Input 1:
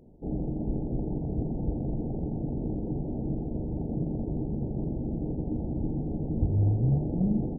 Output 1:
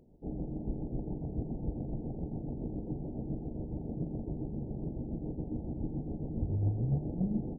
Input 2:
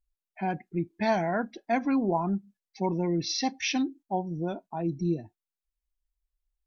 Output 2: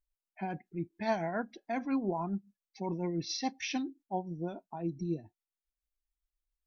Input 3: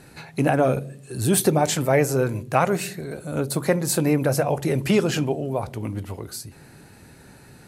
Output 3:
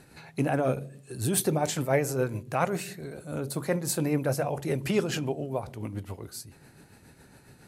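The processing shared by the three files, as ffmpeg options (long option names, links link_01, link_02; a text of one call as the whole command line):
ffmpeg -i in.wav -af "tremolo=f=7.2:d=0.45,volume=-4.5dB" out.wav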